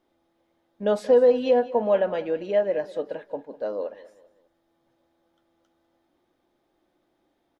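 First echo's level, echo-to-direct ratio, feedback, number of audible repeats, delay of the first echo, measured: -18.0 dB, -17.5 dB, 37%, 2, 0.198 s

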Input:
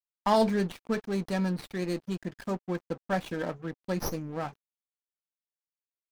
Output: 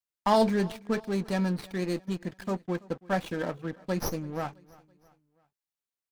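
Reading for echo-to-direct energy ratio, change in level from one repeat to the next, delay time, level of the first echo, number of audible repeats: -22.0 dB, -6.5 dB, 0.331 s, -23.0 dB, 2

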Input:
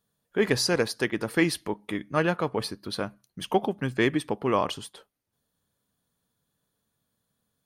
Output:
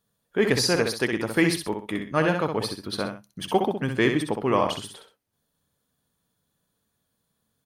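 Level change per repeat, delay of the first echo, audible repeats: -10.0 dB, 64 ms, 2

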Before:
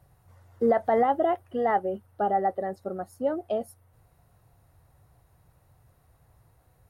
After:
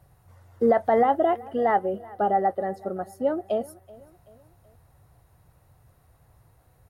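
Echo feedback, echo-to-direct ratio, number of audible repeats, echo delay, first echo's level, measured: 47%, -21.0 dB, 2, 0.38 s, -22.0 dB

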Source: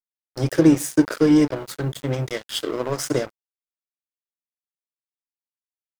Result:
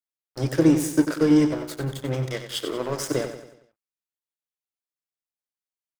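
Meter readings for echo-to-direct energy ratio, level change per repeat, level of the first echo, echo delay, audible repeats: -8.5 dB, -6.5 dB, -9.5 dB, 93 ms, 4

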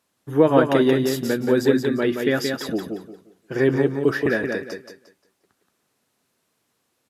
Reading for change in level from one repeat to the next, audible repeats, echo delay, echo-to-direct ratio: -11.5 dB, 3, 0.176 s, -4.5 dB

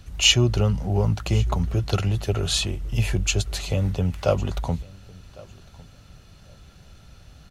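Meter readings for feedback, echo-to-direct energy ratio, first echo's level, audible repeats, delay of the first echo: no steady repeat, -23.0 dB, -23.0 dB, 1, 1.104 s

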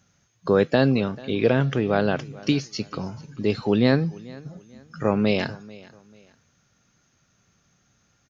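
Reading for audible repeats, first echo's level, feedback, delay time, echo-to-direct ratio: 2, -21.5 dB, 32%, 0.44 s, -21.0 dB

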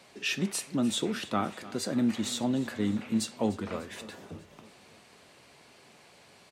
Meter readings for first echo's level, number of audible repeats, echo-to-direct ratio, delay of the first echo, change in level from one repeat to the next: -18.5 dB, 4, -16.5 dB, 0.298 s, -4.5 dB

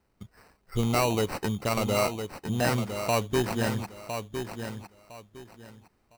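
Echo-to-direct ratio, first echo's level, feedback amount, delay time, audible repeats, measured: -7.5 dB, -8.0 dB, 24%, 1.008 s, 3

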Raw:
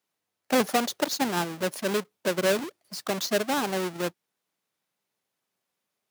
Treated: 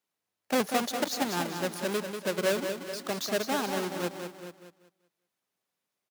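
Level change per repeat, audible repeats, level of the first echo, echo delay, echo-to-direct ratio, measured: no steady repeat, 6, -7.0 dB, 0.191 s, -5.5 dB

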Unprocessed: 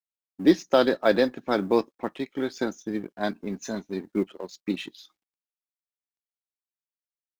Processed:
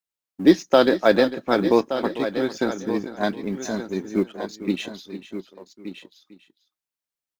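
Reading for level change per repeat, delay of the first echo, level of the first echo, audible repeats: no steady repeat, 0.449 s, -14.0 dB, 3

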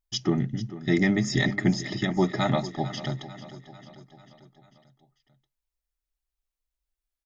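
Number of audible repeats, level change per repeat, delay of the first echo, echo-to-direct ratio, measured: 4, -5.0 dB, 0.445 s, -13.5 dB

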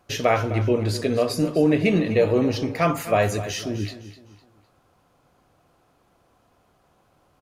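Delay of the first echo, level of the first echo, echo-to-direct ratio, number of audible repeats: 0.254 s, -14.0 dB, -13.5 dB, 3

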